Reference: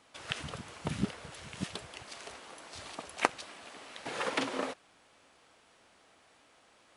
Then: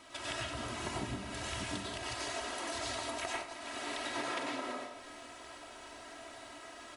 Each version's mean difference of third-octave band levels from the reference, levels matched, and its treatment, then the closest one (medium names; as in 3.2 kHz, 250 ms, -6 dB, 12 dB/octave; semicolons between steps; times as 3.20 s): 8.5 dB: comb 3.1 ms, depth 79%; compression 10:1, threshold -46 dBFS, peak gain reduction 28 dB; on a send: echo whose repeats swap between lows and highs 167 ms, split 1.2 kHz, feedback 54%, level -9 dB; on the sum: plate-style reverb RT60 0.54 s, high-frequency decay 0.85×, pre-delay 85 ms, DRR -4 dB; trim +5.5 dB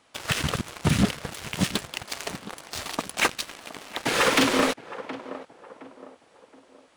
6.0 dB: waveshaping leveller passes 3; tape echo 718 ms, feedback 44%, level -18 dB, low-pass 1.2 kHz; dynamic bell 750 Hz, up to -5 dB, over -39 dBFS, Q 1.1; saturation -21.5 dBFS, distortion -8 dB; trim +7.5 dB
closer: second